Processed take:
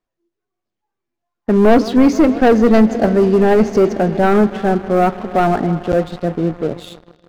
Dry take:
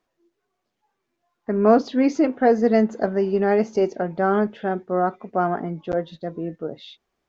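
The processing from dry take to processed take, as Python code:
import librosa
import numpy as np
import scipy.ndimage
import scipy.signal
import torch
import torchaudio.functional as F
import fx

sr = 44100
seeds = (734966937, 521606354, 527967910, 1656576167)

y = fx.echo_heads(x, sr, ms=159, heads='first and second', feedback_pct=70, wet_db=-22)
y = fx.leveller(y, sr, passes=3)
y = fx.low_shelf(y, sr, hz=140.0, db=10.5)
y = y * librosa.db_to_amplitude(-2.5)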